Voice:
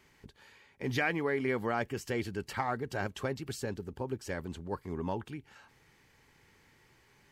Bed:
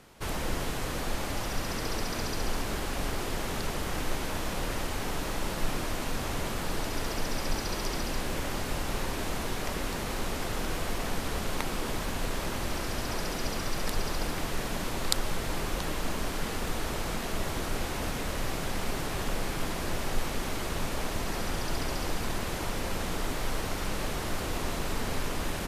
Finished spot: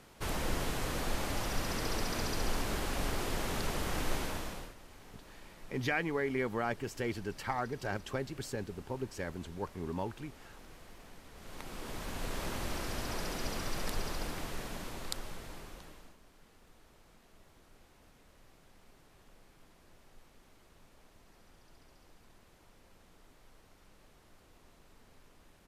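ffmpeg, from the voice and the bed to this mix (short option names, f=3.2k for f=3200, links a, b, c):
-filter_complex "[0:a]adelay=4900,volume=-2dB[a];[1:a]volume=14.5dB,afade=t=out:st=4.17:d=0.57:silence=0.105925,afade=t=in:st=11.34:d=1.11:silence=0.141254,afade=t=out:st=13.82:d=2.35:silence=0.0595662[b];[a][b]amix=inputs=2:normalize=0"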